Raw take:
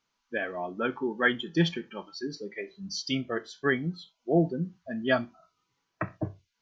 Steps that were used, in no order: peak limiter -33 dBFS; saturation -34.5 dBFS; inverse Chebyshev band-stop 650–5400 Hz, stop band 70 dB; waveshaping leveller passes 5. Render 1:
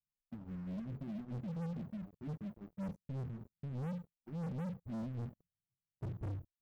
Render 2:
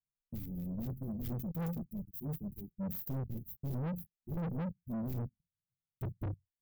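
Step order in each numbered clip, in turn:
peak limiter > inverse Chebyshev band-stop > waveshaping leveller > saturation; waveshaping leveller > inverse Chebyshev band-stop > saturation > peak limiter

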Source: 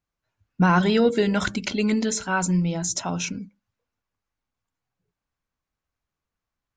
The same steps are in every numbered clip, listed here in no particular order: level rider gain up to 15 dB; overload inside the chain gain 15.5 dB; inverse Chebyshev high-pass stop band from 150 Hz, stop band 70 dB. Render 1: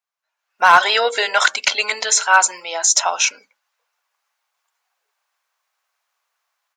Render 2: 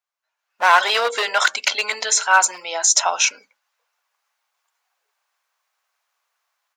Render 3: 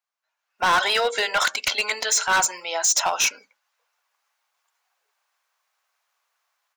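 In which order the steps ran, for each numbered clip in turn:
inverse Chebyshev high-pass > overload inside the chain > level rider; overload inside the chain > inverse Chebyshev high-pass > level rider; inverse Chebyshev high-pass > level rider > overload inside the chain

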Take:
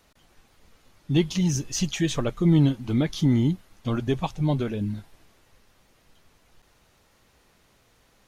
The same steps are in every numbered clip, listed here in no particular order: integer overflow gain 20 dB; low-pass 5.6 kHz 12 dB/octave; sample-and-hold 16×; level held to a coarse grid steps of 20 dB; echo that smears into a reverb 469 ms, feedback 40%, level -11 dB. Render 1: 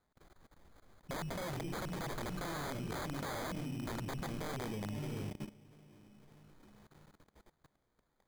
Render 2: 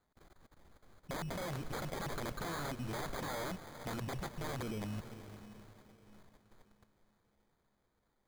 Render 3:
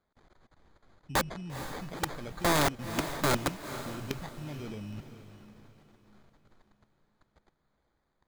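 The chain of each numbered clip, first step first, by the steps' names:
echo that smears into a reverb > integer overflow > low-pass > sample-and-hold > level held to a coarse grid; integer overflow > low-pass > level held to a coarse grid > echo that smears into a reverb > sample-and-hold; sample-and-hold > low-pass > level held to a coarse grid > integer overflow > echo that smears into a reverb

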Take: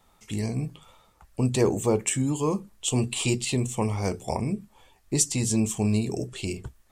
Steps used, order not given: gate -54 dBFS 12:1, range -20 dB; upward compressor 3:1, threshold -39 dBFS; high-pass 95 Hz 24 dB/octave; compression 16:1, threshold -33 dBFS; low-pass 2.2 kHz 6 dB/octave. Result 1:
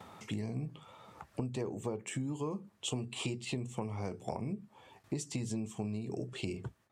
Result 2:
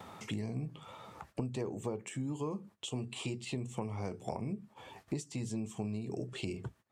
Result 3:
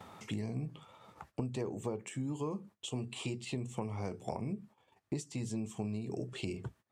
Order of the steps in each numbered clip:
upward compressor > low-pass > gate > high-pass > compression; high-pass > compression > low-pass > upward compressor > gate; upward compressor > high-pass > compression > low-pass > gate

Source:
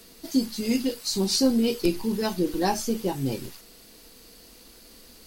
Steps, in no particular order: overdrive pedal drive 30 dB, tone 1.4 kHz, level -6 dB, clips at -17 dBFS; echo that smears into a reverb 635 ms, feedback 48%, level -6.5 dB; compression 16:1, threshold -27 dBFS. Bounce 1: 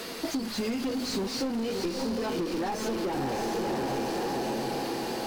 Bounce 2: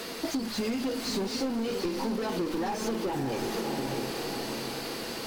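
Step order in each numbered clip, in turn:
echo that smears into a reverb > overdrive pedal > compression; overdrive pedal > echo that smears into a reverb > compression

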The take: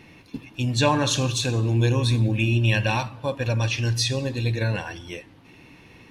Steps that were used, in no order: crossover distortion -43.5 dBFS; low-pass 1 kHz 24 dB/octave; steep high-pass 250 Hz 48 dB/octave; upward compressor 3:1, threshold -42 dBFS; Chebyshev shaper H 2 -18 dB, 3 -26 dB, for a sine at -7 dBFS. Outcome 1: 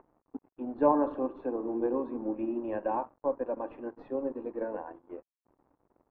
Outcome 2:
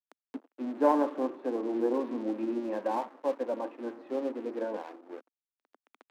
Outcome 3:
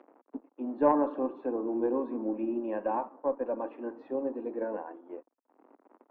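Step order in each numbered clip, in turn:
steep high-pass > Chebyshev shaper > upward compressor > crossover distortion > low-pass; low-pass > Chebyshev shaper > crossover distortion > upward compressor > steep high-pass; crossover distortion > low-pass > upward compressor > steep high-pass > Chebyshev shaper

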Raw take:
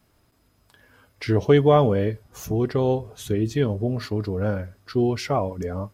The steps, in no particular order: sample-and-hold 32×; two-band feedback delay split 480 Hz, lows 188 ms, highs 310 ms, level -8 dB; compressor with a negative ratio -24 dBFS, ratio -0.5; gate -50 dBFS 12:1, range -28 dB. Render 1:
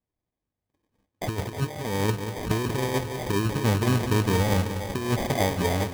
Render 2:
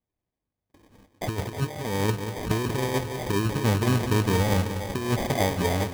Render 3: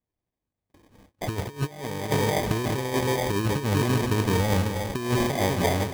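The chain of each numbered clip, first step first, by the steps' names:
gate > compressor with a negative ratio > two-band feedback delay > sample-and-hold; compressor with a negative ratio > gate > two-band feedback delay > sample-and-hold; two-band feedback delay > compressor with a negative ratio > gate > sample-and-hold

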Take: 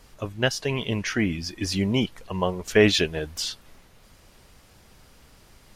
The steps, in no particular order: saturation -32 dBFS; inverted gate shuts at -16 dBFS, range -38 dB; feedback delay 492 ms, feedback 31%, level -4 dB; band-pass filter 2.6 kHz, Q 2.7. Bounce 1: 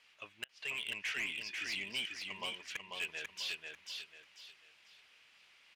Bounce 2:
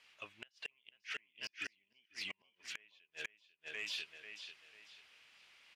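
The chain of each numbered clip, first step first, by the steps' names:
band-pass filter > inverted gate > saturation > feedback delay; feedback delay > inverted gate > band-pass filter > saturation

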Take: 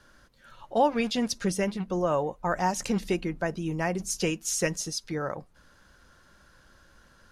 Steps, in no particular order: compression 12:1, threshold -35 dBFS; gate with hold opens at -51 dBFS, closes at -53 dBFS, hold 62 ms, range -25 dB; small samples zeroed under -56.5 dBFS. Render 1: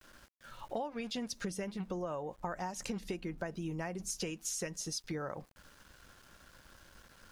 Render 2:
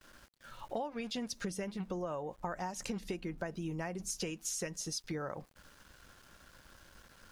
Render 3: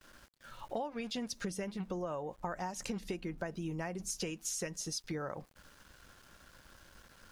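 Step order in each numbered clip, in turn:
gate with hold > small samples zeroed > compression; small samples zeroed > compression > gate with hold; small samples zeroed > gate with hold > compression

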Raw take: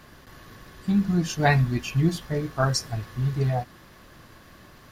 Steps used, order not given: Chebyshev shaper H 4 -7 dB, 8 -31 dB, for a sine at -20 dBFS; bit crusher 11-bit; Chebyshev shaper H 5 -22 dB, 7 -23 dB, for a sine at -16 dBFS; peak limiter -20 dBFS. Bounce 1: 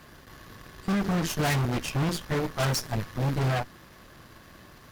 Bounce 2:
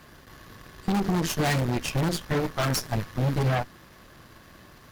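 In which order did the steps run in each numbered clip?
bit crusher > second Chebyshev shaper > first Chebyshev shaper > peak limiter; bit crusher > second Chebyshev shaper > peak limiter > first Chebyshev shaper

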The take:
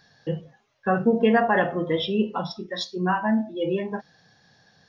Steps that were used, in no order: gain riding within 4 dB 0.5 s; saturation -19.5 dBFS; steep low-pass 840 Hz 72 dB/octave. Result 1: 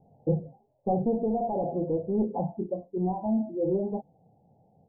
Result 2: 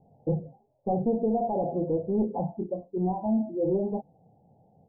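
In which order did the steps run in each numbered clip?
saturation > gain riding > steep low-pass; gain riding > saturation > steep low-pass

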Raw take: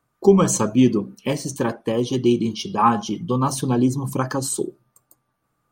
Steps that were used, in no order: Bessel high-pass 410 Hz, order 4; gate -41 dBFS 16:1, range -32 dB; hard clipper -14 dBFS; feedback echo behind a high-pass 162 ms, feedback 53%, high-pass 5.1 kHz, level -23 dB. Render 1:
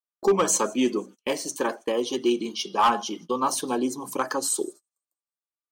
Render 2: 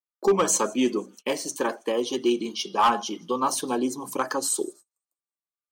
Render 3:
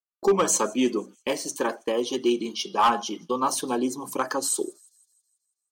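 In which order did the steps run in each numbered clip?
Bessel high-pass > hard clipper > feedback echo behind a high-pass > gate; feedback echo behind a high-pass > gate > Bessel high-pass > hard clipper; Bessel high-pass > gate > feedback echo behind a high-pass > hard clipper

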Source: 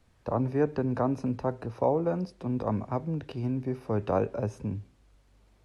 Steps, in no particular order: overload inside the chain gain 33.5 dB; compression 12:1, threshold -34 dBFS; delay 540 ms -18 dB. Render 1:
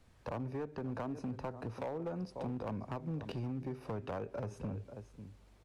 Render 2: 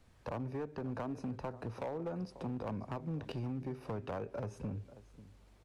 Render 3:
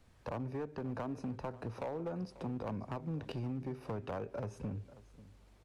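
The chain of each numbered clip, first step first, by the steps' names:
delay > compression > overload inside the chain; compression > delay > overload inside the chain; compression > overload inside the chain > delay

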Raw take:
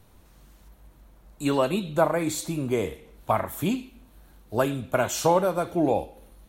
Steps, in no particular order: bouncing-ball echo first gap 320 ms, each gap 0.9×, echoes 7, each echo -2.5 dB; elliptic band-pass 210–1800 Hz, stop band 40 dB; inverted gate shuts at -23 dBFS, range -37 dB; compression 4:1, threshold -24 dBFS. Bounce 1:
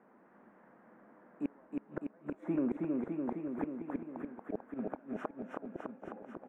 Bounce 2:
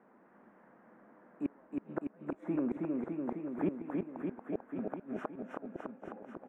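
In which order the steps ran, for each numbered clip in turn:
elliptic band-pass > compression > inverted gate > bouncing-ball echo; compression > elliptic band-pass > inverted gate > bouncing-ball echo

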